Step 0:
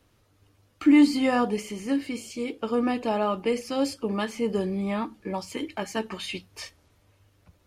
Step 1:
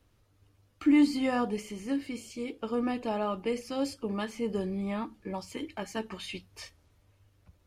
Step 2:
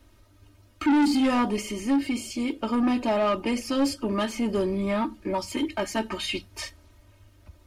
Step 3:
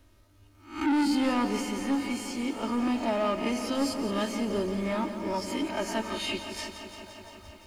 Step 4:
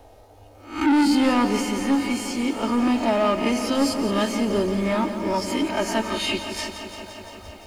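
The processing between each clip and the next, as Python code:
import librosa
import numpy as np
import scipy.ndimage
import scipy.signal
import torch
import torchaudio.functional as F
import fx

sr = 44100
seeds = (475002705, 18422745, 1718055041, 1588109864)

y1 = fx.low_shelf(x, sr, hz=89.0, db=9.0)
y1 = F.gain(torch.from_numpy(y1), -6.0).numpy()
y2 = y1 + 0.72 * np.pad(y1, (int(3.2 * sr / 1000.0), 0))[:len(y1)]
y2 = 10.0 ** (-26.5 / 20.0) * np.tanh(y2 / 10.0 ** (-26.5 / 20.0))
y2 = F.gain(torch.from_numpy(y2), 8.5).numpy()
y3 = fx.spec_swells(y2, sr, rise_s=0.43)
y3 = fx.echo_wet_bandpass(y3, sr, ms=648, feedback_pct=65, hz=980.0, wet_db=-17.5)
y3 = fx.echo_crushed(y3, sr, ms=173, feedback_pct=80, bits=9, wet_db=-11.0)
y3 = F.gain(torch.from_numpy(y3), -5.0).numpy()
y4 = fx.dmg_noise_band(y3, sr, seeds[0], low_hz=410.0, high_hz=840.0, level_db=-59.0)
y4 = F.gain(torch.from_numpy(y4), 7.0).numpy()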